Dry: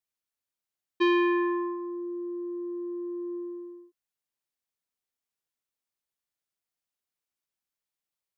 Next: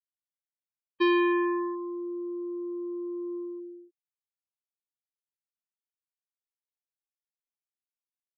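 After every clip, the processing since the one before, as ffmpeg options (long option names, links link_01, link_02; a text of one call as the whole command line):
ffmpeg -i in.wav -af "afftfilt=real='re*gte(hypot(re,im),0.00794)':imag='im*gte(hypot(re,im),0.00794)':win_size=1024:overlap=0.75" out.wav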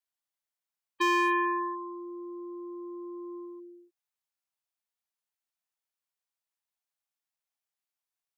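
ffmpeg -i in.wav -af "lowshelf=frequency=540:width_type=q:width=1.5:gain=-7.5,asoftclip=type=hard:threshold=-21dB,volume=3.5dB" out.wav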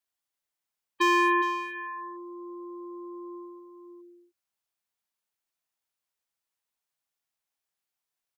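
ffmpeg -i in.wav -filter_complex "[0:a]asplit=2[link_01][link_02];[link_02]adelay=414,volume=-7dB,highshelf=frequency=4000:gain=-9.32[link_03];[link_01][link_03]amix=inputs=2:normalize=0,volume=3dB" out.wav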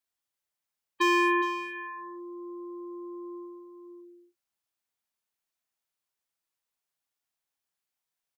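ffmpeg -i in.wav -filter_complex "[0:a]asplit=2[link_01][link_02];[link_02]adelay=34,volume=-11.5dB[link_03];[link_01][link_03]amix=inputs=2:normalize=0,volume=-1dB" out.wav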